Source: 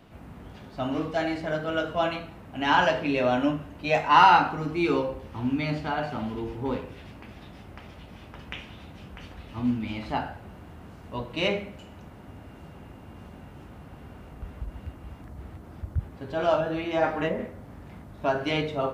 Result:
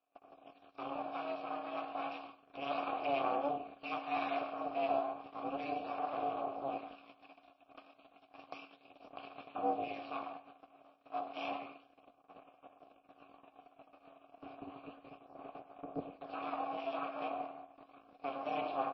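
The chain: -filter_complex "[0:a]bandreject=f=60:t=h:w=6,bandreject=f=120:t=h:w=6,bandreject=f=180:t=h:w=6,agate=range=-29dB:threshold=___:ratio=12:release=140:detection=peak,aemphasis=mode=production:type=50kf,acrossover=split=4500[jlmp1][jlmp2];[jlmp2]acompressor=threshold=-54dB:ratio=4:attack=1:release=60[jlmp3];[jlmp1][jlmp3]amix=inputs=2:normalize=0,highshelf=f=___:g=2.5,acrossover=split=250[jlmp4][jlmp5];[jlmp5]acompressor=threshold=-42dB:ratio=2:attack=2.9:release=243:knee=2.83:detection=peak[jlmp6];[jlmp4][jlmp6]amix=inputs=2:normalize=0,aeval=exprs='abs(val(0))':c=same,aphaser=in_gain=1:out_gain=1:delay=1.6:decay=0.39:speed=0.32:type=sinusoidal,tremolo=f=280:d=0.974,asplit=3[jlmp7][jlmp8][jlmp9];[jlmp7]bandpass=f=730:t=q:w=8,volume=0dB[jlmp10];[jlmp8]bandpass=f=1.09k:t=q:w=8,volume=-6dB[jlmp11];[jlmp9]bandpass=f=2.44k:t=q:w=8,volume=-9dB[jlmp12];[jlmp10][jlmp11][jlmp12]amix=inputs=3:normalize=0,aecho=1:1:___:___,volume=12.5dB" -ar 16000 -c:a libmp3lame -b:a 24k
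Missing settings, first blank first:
-43dB, 2.9k, 101, 0.188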